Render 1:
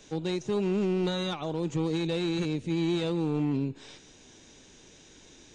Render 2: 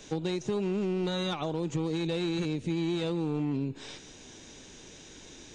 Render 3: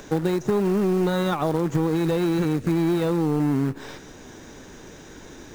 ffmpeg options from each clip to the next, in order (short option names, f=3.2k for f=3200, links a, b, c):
-af "acompressor=threshold=-32dB:ratio=6,volume=4.5dB"
-af "acompressor=mode=upward:threshold=-49dB:ratio=2.5,acrusher=bits=3:mode=log:mix=0:aa=0.000001,highshelf=f=2.1k:t=q:w=1.5:g=-7.5,volume=8.5dB"